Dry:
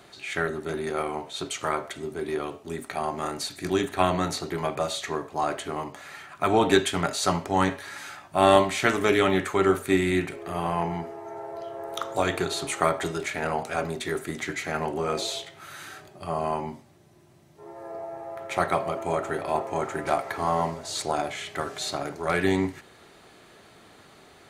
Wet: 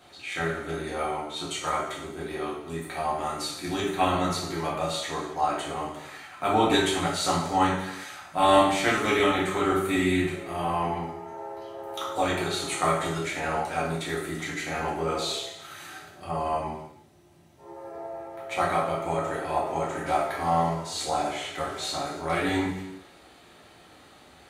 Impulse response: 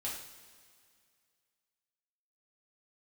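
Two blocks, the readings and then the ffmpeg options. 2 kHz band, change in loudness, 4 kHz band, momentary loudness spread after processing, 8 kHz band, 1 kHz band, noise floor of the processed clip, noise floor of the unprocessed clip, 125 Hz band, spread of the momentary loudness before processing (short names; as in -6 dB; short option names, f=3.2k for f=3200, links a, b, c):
-0.5 dB, -0.5 dB, +1.0 dB, 15 LU, -0.5 dB, +1.0 dB, -53 dBFS, -53 dBFS, -0.5 dB, 15 LU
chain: -filter_complex "[1:a]atrim=start_sample=2205,afade=t=out:st=0.41:d=0.01,atrim=end_sample=18522[a];[0:a][a]afir=irnorm=-1:irlink=0,volume=-1dB"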